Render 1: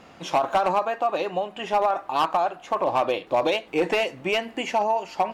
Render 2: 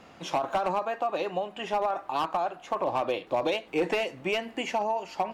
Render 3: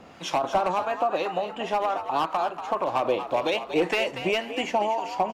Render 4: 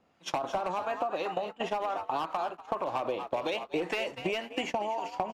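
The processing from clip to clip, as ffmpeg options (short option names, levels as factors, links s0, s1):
-filter_complex "[0:a]acrossover=split=400[s0][s1];[s1]acompressor=threshold=0.0631:ratio=2[s2];[s0][s2]amix=inputs=2:normalize=0,volume=0.708"
-filter_complex "[0:a]acrossover=split=990[s0][s1];[s0]aeval=exprs='val(0)*(1-0.5/2+0.5/2*cos(2*PI*1.9*n/s))':c=same[s2];[s1]aeval=exprs='val(0)*(1-0.5/2-0.5/2*cos(2*PI*1.9*n/s))':c=same[s3];[s2][s3]amix=inputs=2:normalize=0,asplit=2[s4][s5];[s5]asplit=4[s6][s7][s8][s9];[s6]adelay=237,afreqshift=79,volume=0.316[s10];[s7]adelay=474,afreqshift=158,volume=0.107[s11];[s8]adelay=711,afreqshift=237,volume=0.0367[s12];[s9]adelay=948,afreqshift=316,volume=0.0124[s13];[s10][s11][s12][s13]amix=inputs=4:normalize=0[s14];[s4][s14]amix=inputs=2:normalize=0,volume=1.88"
-af "agate=range=0.0794:threshold=0.0282:ratio=16:detection=peak,acompressor=threshold=0.0316:ratio=6,volume=1.19"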